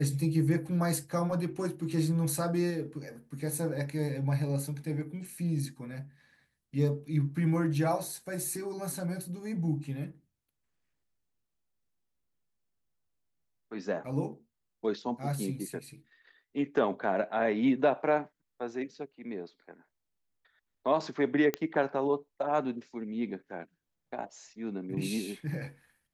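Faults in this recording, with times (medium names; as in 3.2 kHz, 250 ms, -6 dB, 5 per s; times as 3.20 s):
21.54 s: pop -15 dBFS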